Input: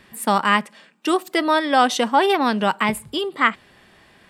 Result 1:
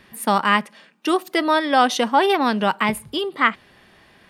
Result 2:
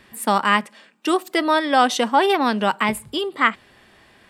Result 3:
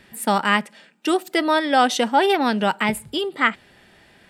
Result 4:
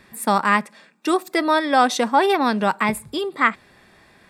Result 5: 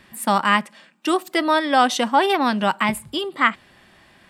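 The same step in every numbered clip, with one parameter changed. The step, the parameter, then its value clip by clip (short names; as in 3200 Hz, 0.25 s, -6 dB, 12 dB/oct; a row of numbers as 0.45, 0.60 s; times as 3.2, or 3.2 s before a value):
notch, frequency: 7700, 170, 1100, 3000, 440 Hz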